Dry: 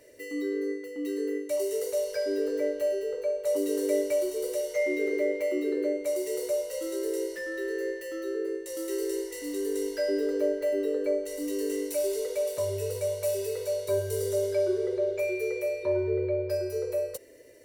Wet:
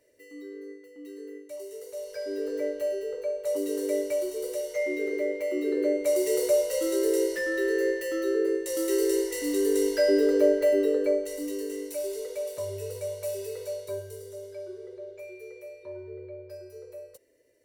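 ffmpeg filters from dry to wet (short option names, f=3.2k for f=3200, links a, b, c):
-af "volume=6dB,afade=t=in:st=1.87:d=0.72:silence=0.334965,afade=t=in:st=5.46:d=0.85:silence=0.421697,afade=t=out:st=10.6:d=1.08:silence=0.316228,afade=t=out:st=13.68:d=0.55:silence=0.334965"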